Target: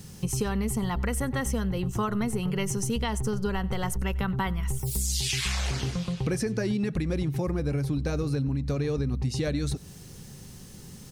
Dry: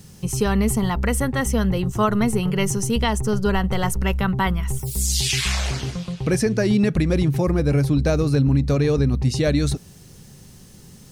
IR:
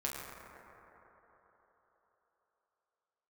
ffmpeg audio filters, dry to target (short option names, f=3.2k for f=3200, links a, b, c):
-filter_complex "[0:a]bandreject=f=630:w=15,acompressor=threshold=-25dB:ratio=6,asplit=2[a][b];[b]adelay=93.29,volume=-22dB,highshelf=f=4k:g=-2.1[c];[a][c]amix=inputs=2:normalize=0"